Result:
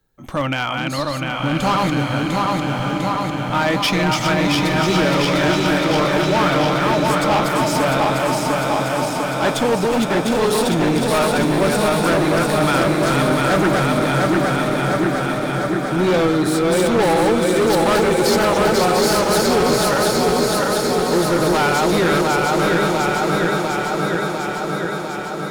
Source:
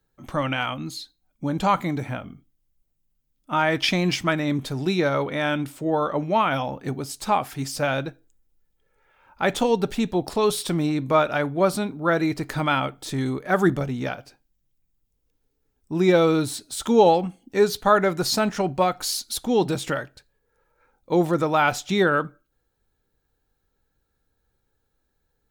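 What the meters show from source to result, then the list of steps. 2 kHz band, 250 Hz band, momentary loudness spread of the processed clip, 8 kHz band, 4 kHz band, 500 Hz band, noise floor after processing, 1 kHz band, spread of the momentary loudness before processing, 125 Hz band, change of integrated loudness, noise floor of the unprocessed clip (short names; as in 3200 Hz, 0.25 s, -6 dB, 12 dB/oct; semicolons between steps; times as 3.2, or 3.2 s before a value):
+8.0 dB, +7.5 dB, 6 LU, +8.5 dB, +8.5 dB, +6.5 dB, -24 dBFS, +7.0 dB, 11 LU, +8.0 dB, +5.5 dB, -74 dBFS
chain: regenerating reverse delay 0.35 s, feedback 84%, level -3 dB; hard clip -18.5 dBFS, distortion -9 dB; bloom reverb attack 1.2 s, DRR 5.5 dB; gain +4.5 dB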